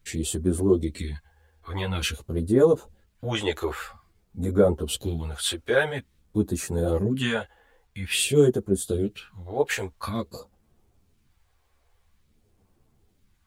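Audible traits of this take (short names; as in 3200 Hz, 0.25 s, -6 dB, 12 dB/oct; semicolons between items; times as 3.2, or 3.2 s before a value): phasing stages 2, 0.49 Hz, lowest notch 170–2800 Hz; a quantiser's noise floor 12-bit, dither none; a shimmering, thickened sound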